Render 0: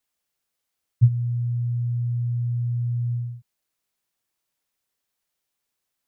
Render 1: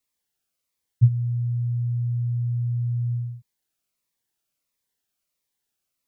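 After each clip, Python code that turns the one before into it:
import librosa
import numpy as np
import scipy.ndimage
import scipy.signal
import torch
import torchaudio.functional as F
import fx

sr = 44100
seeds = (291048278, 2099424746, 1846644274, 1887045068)

y = fx.notch_cascade(x, sr, direction='falling', hz=1.5)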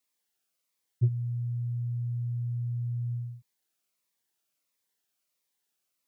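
y = fx.highpass(x, sr, hz=230.0, slope=6)
y = 10.0 ** (-16.0 / 20.0) * np.tanh(y / 10.0 ** (-16.0 / 20.0))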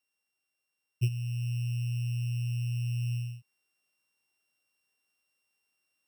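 y = np.r_[np.sort(x[:len(x) // 16 * 16].reshape(-1, 16), axis=1).ravel(), x[len(x) // 16 * 16:]]
y = fx.rider(y, sr, range_db=10, speed_s=0.5)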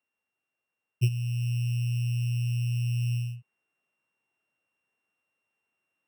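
y = fx.wiener(x, sr, points=9)
y = scipy.signal.sosfilt(scipy.signal.butter(2, 83.0, 'highpass', fs=sr, output='sos'), y)
y = y * 10.0 ** (4.5 / 20.0)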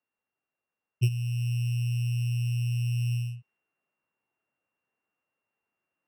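y = fx.env_lowpass(x, sr, base_hz=2100.0, full_db=-28.0)
y = fx.notch(y, sr, hz=6700.0, q=21.0)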